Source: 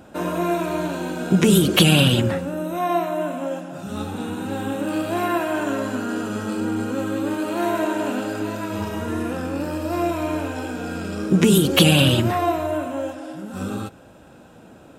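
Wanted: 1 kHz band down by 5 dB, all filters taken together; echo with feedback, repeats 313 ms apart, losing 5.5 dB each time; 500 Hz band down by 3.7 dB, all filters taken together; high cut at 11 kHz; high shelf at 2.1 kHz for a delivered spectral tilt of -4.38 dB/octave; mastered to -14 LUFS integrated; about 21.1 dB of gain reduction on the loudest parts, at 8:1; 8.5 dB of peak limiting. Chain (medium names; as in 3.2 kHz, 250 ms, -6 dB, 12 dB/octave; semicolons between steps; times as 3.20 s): low-pass 11 kHz; peaking EQ 500 Hz -3.5 dB; peaking EQ 1 kHz -7.5 dB; treble shelf 2.1 kHz +7.5 dB; compression 8:1, threshold -31 dBFS; peak limiter -26.5 dBFS; feedback delay 313 ms, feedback 53%, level -5.5 dB; trim +20.5 dB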